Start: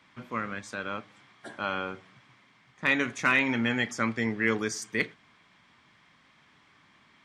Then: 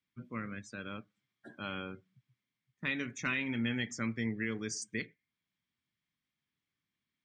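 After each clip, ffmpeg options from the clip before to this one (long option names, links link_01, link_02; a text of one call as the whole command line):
ffmpeg -i in.wav -af "afftdn=noise_reduction=23:noise_floor=-43,equalizer=frequency=900:width=0.56:gain=-14,alimiter=limit=-23dB:level=0:latency=1:release=438" out.wav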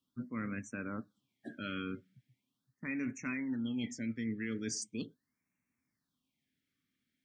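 ffmpeg -i in.wav -af "equalizer=frequency=260:width=3.7:gain=10.5,areverse,acompressor=threshold=-37dB:ratio=6,areverse,afftfilt=real='re*(1-between(b*sr/1024,770*pow(4000/770,0.5+0.5*sin(2*PI*0.4*pts/sr))/1.41,770*pow(4000/770,0.5+0.5*sin(2*PI*0.4*pts/sr))*1.41))':imag='im*(1-between(b*sr/1024,770*pow(4000/770,0.5+0.5*sin(2*PI*0.4*pts/sr))/1.41,770*pow(4000/770,0.5+0.5*sin(2*PI*0.4*pts/sr))*1.41))':win_size=1024:overlap=0.75,volume=2.5dB" out.wav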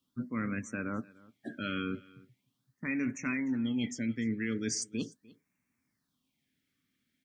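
ffmpeg -i in.wav -af "aecho=1:1:299:0.075,volume=4.5dB" out.wav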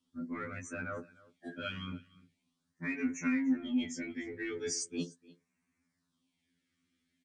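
ffmpeg -i in.wav -filter_complex "[0:a]asplit=2[link_01][link_02];[link_02]asoftclip=type=tanh:threshold=-35.5dB,volume=-12dB[link_03];[link_01][link_03]amix=inputs=2:normalize=0,aresample=22050,aresample=44100,afftfilt=real='re*2*eq(mod(b,4),0)':imag='im*2*eq(mod(b,4),0)':win_size=2048:overlap=0.75" out.wav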